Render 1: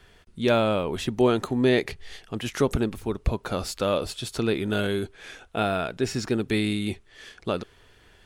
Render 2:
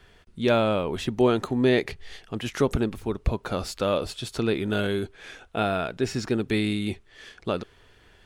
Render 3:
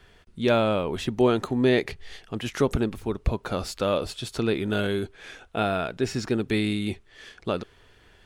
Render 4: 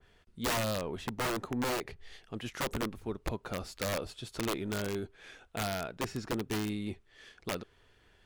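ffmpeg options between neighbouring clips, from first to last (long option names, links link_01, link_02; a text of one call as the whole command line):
ffmpeg -i in.wav -af "equalizer=frequency=12000:width=0.45:gain=-4" out.wav
ffmpeg -i in.wav -af anull out.wav
ffmpeg -i in.wav -af "aeval=exprs='(mod(7.08*val(0)+1,2)-1)/7.08':channel_layout=same,aeval=exprs='0.141*(cos(1*acos(clip(val(0)/0.141,-1,1)))-cos(1*PI/2))+0.00355*(cos(6*acos(clip(val(0)/0.141,-1,1)))-cos(6*PI/2))':channel_layout=same,adynamicequalizer=threshold=0.01:dfrequency=1900:dqfactor=0.7:tfrequency=1900:tqfactor=0.7:attack=5:release=100:ratio=0.375:range=3:mode=cutabove:tftype=highshelf,volume=-8.5dB" out.wav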